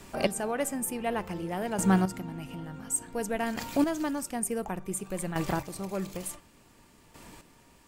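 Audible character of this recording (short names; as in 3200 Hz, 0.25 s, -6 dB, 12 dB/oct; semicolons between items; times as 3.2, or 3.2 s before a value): chopped level 0.56 Hz, depth 65%, duty 15%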